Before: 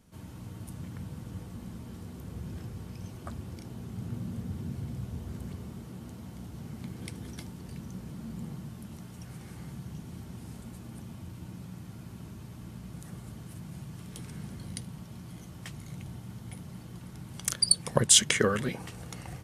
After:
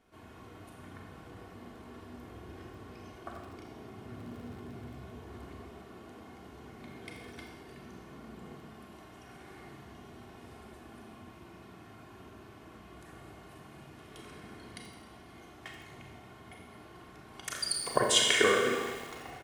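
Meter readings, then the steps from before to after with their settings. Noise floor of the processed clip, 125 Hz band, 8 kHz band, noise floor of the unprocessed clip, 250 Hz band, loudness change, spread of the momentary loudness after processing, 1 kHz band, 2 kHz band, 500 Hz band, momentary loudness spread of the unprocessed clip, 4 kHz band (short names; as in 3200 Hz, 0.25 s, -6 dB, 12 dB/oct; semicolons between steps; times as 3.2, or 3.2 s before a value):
-53 dBFS, -12.5 dB, -8.5 dB, -47 dBFS, -5.5 dB, +2.0 dB, 24 LU, +4.0 dB, +3.5 dB, +2.0 dB, 18 LU, -1.5 dB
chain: tone controls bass -14 dB, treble -14 dB; comb 2.8 ms, depth 46%; Schroeder reverb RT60 1.2 s, combs from 29 ms, DRR 0.5 dB; lo-fi delay 81 ms, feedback 80%, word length 7-bit, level -12 dB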